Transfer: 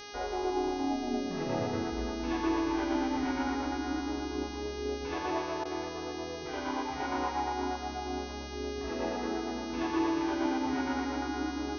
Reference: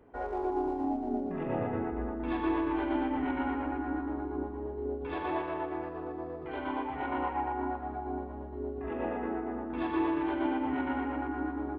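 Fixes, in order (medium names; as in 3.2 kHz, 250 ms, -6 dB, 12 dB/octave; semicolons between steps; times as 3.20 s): de-hum 411.9 Hz, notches 15; interpolate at 5.64 s, 11 ms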